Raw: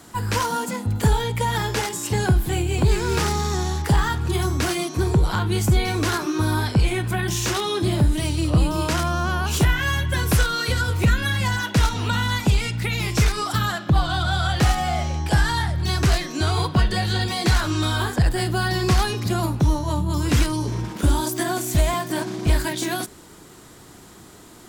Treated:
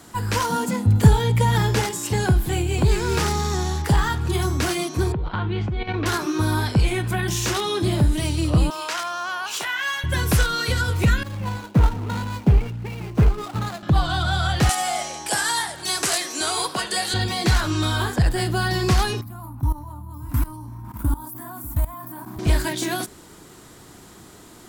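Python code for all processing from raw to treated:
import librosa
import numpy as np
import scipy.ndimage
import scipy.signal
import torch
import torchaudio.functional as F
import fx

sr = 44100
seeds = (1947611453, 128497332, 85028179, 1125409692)

y = fx.chain(x, sr, fx.highpass(hz=87.0, slope=12),
    fx.low_shelf(hz=210.0, db=11.5), at=(0.49, 1.91))
y = fx.chain(y, sr, fx.lowpass(hz=3300.0, slope=24),
    fx.level_steps(step_db=12), at=(5.12, 6.06))
y = fx.chain(y, sr, fx.highpass(hz=830.0, slope=12),
    fx.peak_eq(hz=12000.0, db=-6.0, octaves=0.96), at=(8.7, 10.04))
y = fx.chain(y, sr, fx.median_filter(points=25),
    fx.band_widen(depth_pct=100), at=(11.23, 13.83))
y = fx.chain(y, sr, fx.highpass(hz=400.0, slope=12),
    fx.peak_eq(hz=9100.0, db=13.5, octaves=1.1),
    fx.echo_warbled(ms=80, feedback_pct=60, rate_hz=2.8, cents=192, wet_db=-19.0), at=(14.69, 17.14))
y = fx.chain(y, sr, fx.curve_eq(hz=(110.0, 170.0, 270.0, 420.0, 600.0, 970.0, 1700.0, 3100.0, 6600.0, 15000.0), db=(0, -8, 3, -23, -10, 3, -9, -17, -16, 12)),
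    fx.level_steps(step_db=18),
    fx.echo_single(ms=597, db=-16.5), at=(19.21, 22.39))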